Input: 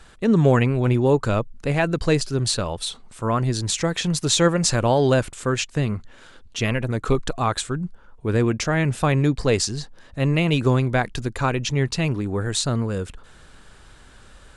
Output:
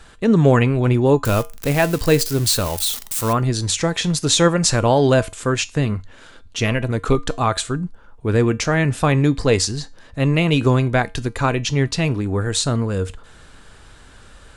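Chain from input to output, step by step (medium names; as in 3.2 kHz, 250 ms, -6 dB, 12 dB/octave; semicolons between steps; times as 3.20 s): 1.25–3.33 s: zero-crossing glitches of -20 dBFS; feedback comb 93 Hz, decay 0.27 s, harmonics odd, mix 50%; trim +8 dB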